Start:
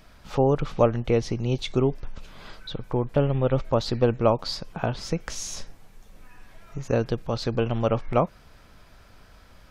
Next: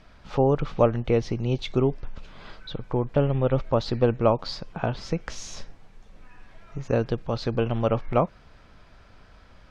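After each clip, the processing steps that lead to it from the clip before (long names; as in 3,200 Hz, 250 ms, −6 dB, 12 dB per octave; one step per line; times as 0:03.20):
Bessel low-pass filter 4,400 Hz, order 2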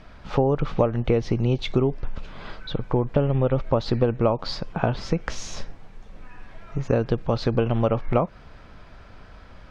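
high-shelf EQ 3,800 Hz −6.5 dB
downward compressor 6 to 1, threshold −23 dBFS, peak gain reduction 9.5 dB
level +6.5 dB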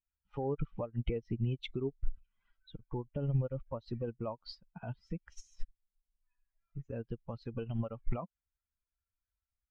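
spectral dynamics exaggerated over time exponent 2
brickwall limiter −21 dBFS, peak gain reduction 10 dB
expander for the loud parts 2.5 to 1, over −40 dBFS
level +1 dB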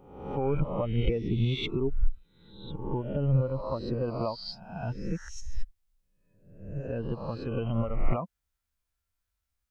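peak hold with a rise ahead of every peak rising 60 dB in 0.81 s
level +5.5 dB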